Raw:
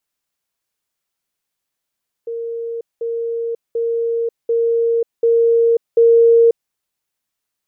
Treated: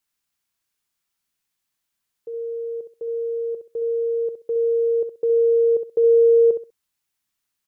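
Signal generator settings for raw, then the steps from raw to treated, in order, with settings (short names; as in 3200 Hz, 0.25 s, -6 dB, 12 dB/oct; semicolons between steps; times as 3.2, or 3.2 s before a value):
level ladder 463 Hz -22 dBFS, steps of 3 dB, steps 6, 0.54 s 0.20 s
bell 530 Hz -7 dB 1.1 oct; on a send: feedback echo 65 ms, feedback 22%, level -8.5 dB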